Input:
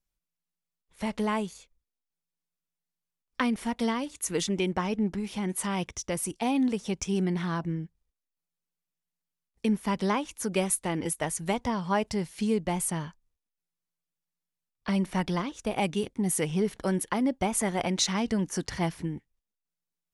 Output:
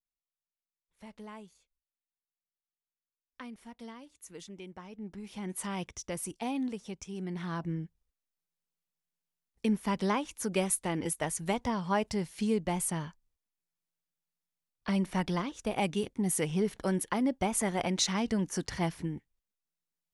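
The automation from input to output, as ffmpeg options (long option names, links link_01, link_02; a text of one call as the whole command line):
ffmpeg -i in.wav -af "volume=4.5dB,afade=type=in:start_time=4.93:duration=0.66:silence=0.251189,afade=type=out:start_time=6.33:duration=0.81:silence=0.446684,afade=type=in:start_time=7.14:duration=0.65:silence=0.298538" out.wav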